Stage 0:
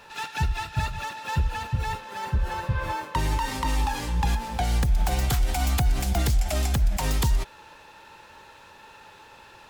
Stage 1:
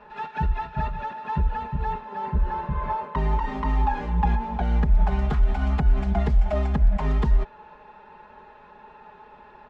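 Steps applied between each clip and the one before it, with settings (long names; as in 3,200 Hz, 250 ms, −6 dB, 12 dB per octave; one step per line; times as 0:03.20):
low-pass filter 1,400 Hz 12 dB per octave
comb filter 4.8 ms, depth 99%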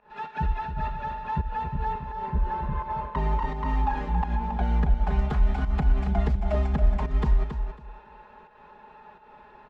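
fake sidechain pumping 85 BPM, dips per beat 1, −19 dB, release 186 ms
repeating echo 275 ms, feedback 20%, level −8 dB
level −2.5 dB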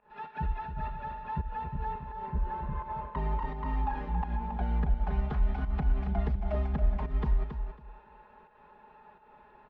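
high-frequency loss of the air 160 metres
level −5.5 dB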